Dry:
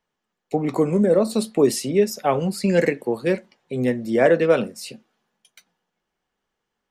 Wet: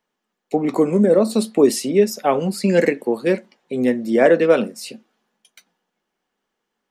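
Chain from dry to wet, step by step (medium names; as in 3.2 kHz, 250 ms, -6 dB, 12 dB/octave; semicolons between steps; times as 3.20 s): resonant low shelf 160 Hz -8.5 dB, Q 1.5; trim +2 dB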